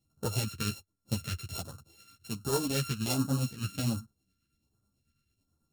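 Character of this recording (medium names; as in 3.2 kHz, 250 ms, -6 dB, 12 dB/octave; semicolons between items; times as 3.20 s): a buzz of ramps at a fixed pitch in blocks of 32 samples; phasing stages 2, 1.3 Hz, lowest notch 760–2200 Hz; tremolo triangle 9.1 Hz, depth 55%; a shimmering, thickened sound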